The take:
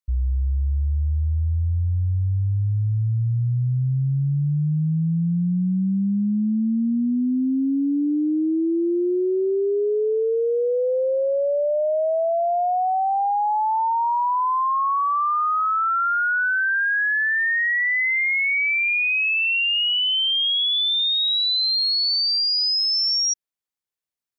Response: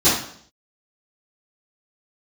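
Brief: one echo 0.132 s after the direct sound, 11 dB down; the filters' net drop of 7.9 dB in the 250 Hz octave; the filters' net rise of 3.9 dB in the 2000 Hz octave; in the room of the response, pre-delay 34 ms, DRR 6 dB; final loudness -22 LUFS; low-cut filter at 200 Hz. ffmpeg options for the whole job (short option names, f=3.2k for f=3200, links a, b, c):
-filter_complex "[0:a]highpass=200,equalizer=f=250:t=o:g=-8.5,equalizer=f=2k:t=o:g=5,aecho=1:1:132:0.282,asplit=2[a][b];[1:a]atrim=start_sample=2205,adelay=34[c];[b][c]afir=irnorm=-1:irlink=0,volume=-26.5dB[d];[a][d]amix=inputs=2:normalize=0,volume=-5dB"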